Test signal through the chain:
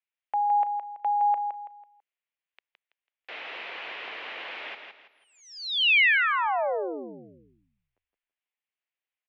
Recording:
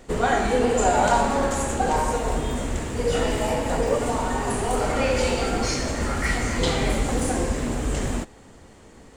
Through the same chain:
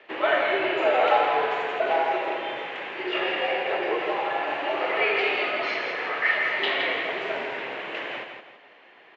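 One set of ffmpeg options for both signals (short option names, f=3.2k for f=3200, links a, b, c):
-af "aecho=1:1:165|330|495|660:0.473|0.156|0.0515|0.017,aexciter=amount=3:drive=2.5:freq=2k,highpass=f=580:t=q:w=0.5412,highpass=f=580:t=q:w=1.307,lowpass=f=3.2k:t=q:w=0.5176,lowpass=f=3.2k:t=q:w=0.7071,lowpass=f=3.2k:t=q:w=1.932,afreqshift=-110"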